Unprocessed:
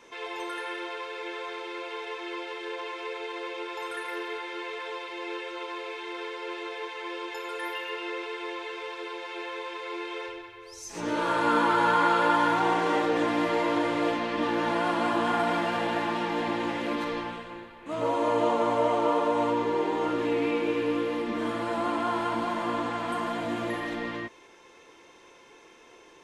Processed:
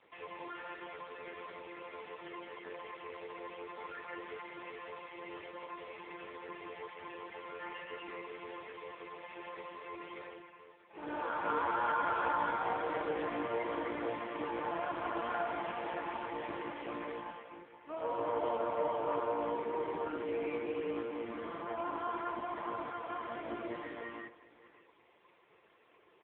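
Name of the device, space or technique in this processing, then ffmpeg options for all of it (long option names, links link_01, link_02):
satellite phone: -filter_complex "[0:a]asettb=1/sr,asplit=3[link_01][link_02][link_03];[link_01]atrim=end=23.434[link_04];[link_02]atrim=start=23.43:end=23.88,asetpts=PTS-STARTPTS,afade=type=in:duration=0.004:curve=qsin,afade=type=out:start_time=0.446:duration=0.004:curve=qsin,lowshelf=frequency=390:gain=3.5[link_05];[link_03]atrim=start=23.876[link_06];[link_04][link_05]acrossfade=duration=0.004:curve1=hsin:curve2=qsin[link_07];[link_07][link_06]acrossfade=duration=0.004:curve1=qsin:curve2=hsin,highpass=330,lowpass=3200,aecho=1:1:584:0.126,volume=-6.5dB" -ar 8000 -c:a libopencore_amrnb -b:a 5150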